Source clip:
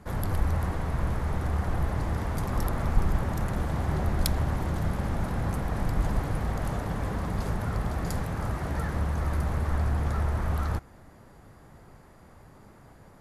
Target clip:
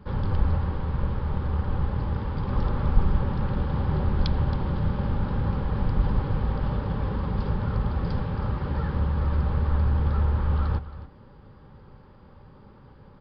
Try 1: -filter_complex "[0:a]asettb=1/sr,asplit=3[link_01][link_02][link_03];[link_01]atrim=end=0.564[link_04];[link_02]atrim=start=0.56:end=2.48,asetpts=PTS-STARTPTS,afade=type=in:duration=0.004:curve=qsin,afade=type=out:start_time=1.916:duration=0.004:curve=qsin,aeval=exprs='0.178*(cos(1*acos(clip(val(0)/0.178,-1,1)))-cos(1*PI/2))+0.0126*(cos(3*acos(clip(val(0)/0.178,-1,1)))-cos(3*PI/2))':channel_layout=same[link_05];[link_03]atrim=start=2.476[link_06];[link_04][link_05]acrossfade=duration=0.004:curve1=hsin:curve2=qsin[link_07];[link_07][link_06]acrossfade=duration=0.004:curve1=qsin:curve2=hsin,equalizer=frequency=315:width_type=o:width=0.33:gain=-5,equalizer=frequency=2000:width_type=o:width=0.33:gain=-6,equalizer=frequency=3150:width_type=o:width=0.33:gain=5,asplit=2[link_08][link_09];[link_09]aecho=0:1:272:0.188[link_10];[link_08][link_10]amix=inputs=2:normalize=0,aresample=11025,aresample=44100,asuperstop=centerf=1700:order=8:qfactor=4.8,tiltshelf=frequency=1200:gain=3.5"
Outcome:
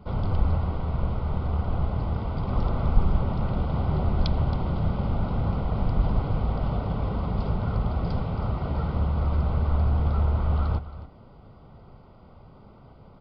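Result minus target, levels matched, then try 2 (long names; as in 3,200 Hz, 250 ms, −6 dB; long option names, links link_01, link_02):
2,000 Hz band −3.5 dB
-filter_complex "[0:a]asettb=1/sr,asplit=3[link_01][link_02][link_03];[link_01]atrim=end=0.564[link_04];[link_02]atrim=start=0.56:end=2.48,asetpts=PTS-STARTPTS,afade=type=in:duration=0.004:curve=qsin,afade=type=out:start_time=1.916:duration=0.004:curve=qsin,aeval=exprs='0.178*(cos(1*acos(clip(val(0)/0.178,-1,1)))-cos(1*PI/2))+0.0126*(cos(3*acos(clip(val(0)/0.178,-1,1)))-cos(3*PI/2))':channel_layout=same[link_05];[link_03]atrim=start=2.476[link_06];[link_04][link_05]acrossfade=duration=0.004:curve1=hsin:curve2=qsin[link_07];[link_07][link_06]acrossfade=duration=0.004:curve1=qsin:curve2=hsin,equalizer=frequency=315:width_type=o:width=0.33:gain=-5,equalizer=frequency=2000:width_type=o:width=0.33:gain=-6,equalizer=frequency=3150:width_type=o:width=0.33:gain=5,asplit=2[link_08][link_09];[link_09]aecho=0:1:272:0.188[link_10];[link_08][link_10]amix=inputs=2:normalize=0,aresample=11025,aresample=44100,asuperstop=centerf=680:order=8:qfactor=4.8,tiltshelf=frequency=1200:gain=3.5"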